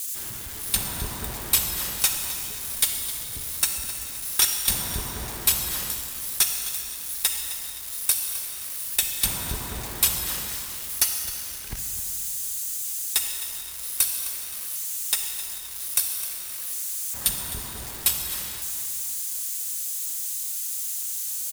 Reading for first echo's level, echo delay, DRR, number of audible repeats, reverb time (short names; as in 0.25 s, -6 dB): -13.5 dB, 0.26 s, 4.0 dB, 2, 2.9 s